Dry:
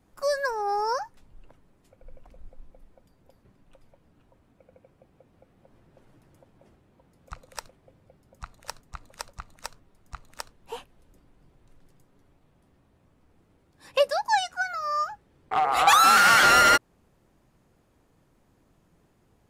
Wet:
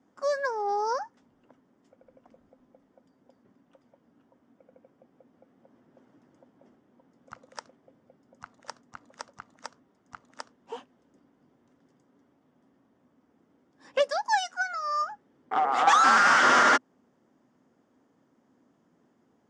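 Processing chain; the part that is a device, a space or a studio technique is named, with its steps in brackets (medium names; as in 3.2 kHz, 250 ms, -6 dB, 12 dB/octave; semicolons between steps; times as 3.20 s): 13.99–15.02 s: tilt EQ +2 dB/octave; full-range speaker at full volume (loudspeaker Doppler distortion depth 0.35 ms; cabinet simulation 210–6600 Hz, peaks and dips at 250 Hz +10 dB, 2.5 kHz -8 dB, 4.1 kHz -10 dB); trim -1.5 dB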